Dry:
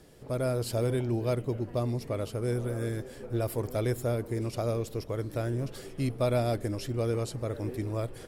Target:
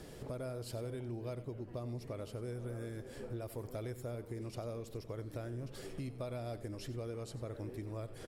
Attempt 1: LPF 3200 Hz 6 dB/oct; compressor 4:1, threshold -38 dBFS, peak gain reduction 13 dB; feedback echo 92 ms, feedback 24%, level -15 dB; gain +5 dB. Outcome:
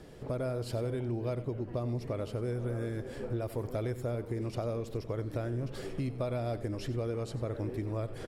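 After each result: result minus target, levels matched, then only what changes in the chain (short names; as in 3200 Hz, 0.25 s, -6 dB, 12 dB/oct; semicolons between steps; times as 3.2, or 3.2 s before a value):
compressor: peak gain reduction -8 dB; 8000 Hz band -6.5 dB
change: compressor 4:1, threshold -48.5 dBFS, peak gain reduction 21 dB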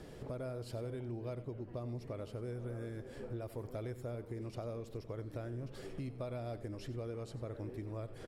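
8000 Hz band -6.5 dB
change: LPF 11000 Hz 6 dB/oct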